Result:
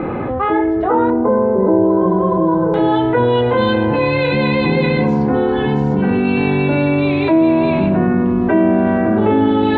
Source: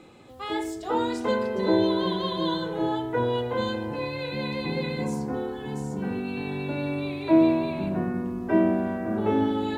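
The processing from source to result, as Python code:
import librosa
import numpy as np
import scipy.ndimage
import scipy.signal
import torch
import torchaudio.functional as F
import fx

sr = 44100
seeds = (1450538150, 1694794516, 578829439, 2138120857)

y = fx.lowpass(x, sr, hz=fx.steps((0.0, 1800.0), (1.1, 1100.0), (2.74, 3400.0)), slope=24)
y = fx.env_flatten(y, sr, amount_pct=70)
y = F.gain(torch.from_numpy(y), 4.5).numpy()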